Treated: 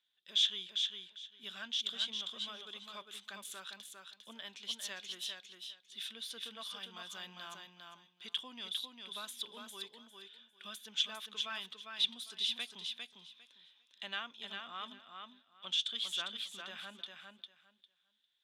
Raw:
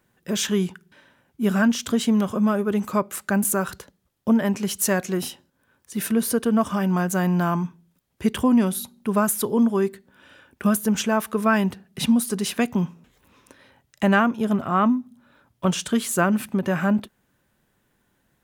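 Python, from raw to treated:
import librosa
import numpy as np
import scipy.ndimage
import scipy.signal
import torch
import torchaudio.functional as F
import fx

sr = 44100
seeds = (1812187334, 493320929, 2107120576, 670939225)

y = fx.bandpass_q(x, sr, hz=3500.0, q=12.0)
y = fx.echo_feedback(y, sr, ms=402, feedback_pct=18, wet_db=-5)
y = F.gain(torch.from_numpy(y), 6.5).numpy()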